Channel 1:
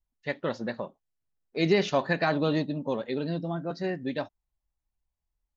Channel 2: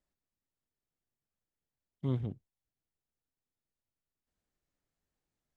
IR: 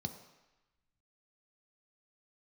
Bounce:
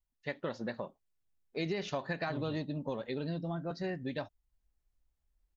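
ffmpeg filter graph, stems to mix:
-filter_complex "[0:a]asubboost=boost=3:cutoff=130,volume=-3.5dB[a];[1:a]adelay=250,volume=-5.5dB[b];[a][b]amix=inputs=2:normalize=0,acompressor=threshold=-32dB:ratio=6"

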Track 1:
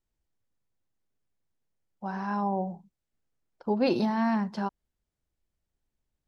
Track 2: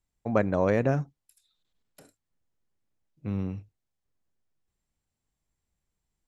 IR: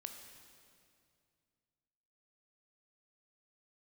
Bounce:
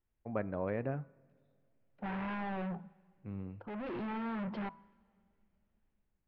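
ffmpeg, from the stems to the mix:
-filter_complex "[0:a]alimiter=limit=-23.5dB:level=0:latency=1:release=56,dynaudnorm=f=110:g=9:m=6dB,asoftclip=type=hard:threshold=-35.5dB,volume=-2dB,asplit=2[a][b];[b]volume=-13.5dB[c];[1:a]volume=-12.5dB,asplit=3[d][e][f];[e]volume=-16.5dB[g];[f]apad=whole_len=276871[h];[a][h]sidechaincompress=threshold=-48dB:ratio=3:attack=16:release=779[i];[2:a]atrim=start_sample=2205[j];[c][g]amix=inputs=2:normalize=0[k];[k][j]afir=irnorm=-1:irlink=0[l];[i][d][l]amix=inputs=3:normalize=0,lowpass=f=2.7k:w=0.5412,lowpass=f=2.7k:w=1.3066,bandreject=f=164.1:t=h:w=4,bandreject=f=328.2:t=h:w=4,bandreject=f=492.3:t=h:w=4,bandreject=f=656.4:t=h:w=4,bandreject=f=820.5:t=h:w=4,bandreject=f=984.6:t=h:w=4,bandreject=f=1.1487k:t=h:w=4,bandreject=f=1.3128k:t=h:w=4,bandreject=f=1.4769k:t=h:w=4"

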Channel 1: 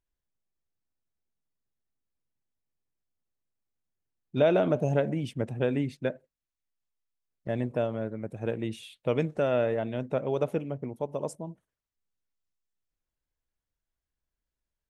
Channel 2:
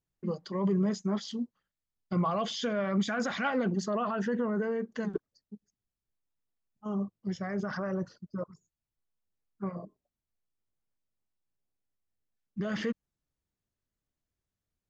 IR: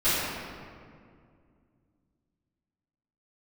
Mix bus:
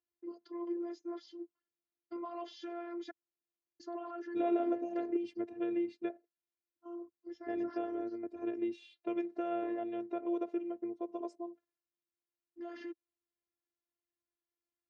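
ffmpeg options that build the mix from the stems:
-filter_complex "[0:a]acompressor=threshold=-30dB:ratio=2,volume=-4.5dB[a];[1:a]volume=-10.5dB,asplit=3[b][c][d];[b]atrim=end=3.11,asetpts=PTS-STARTPTS,afade=t=out:st=3.106:d=0.004:c=hsin[e];[c]atrim=start=3.11:end=3.8,asetpts=PTS-STARTPTS,volume=0[f];[d]atrim=start=3.8,asetpts=PTS-STARTPTS,afade=t=in:d=0.004:c=hsin[g];[e][f][g]concat=n=3:v=0:a=1[h];[a][h]amix=inputs=2:normalize=0,lowshelf=f=400:g=3.5,afftfilt=real='hypot(re,im)*cos(PI*b)':imag='0':win_size=512:overlap=0.75,highpass=150,equalizer=f=160:t=q:w=4:g=-10,equalizer=f=330:t=q:w=4:g=5,equalizer=f=460:t=q:w=4:g=6,equalizer=f=3.3k:t=q:w=4:g=-5,lowpass=f=5.2k:w=0.5412,lowpass=f=5.2k:w=1.3066"

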